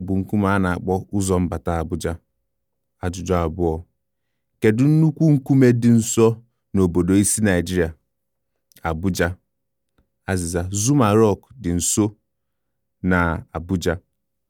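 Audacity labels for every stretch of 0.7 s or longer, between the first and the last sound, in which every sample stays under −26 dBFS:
2.140000	3.030000	silence
3.790000	4.630000	silence
7.900000	8.770000	silence
9.320000	10.280000	silence
12.090000	13.040000	silence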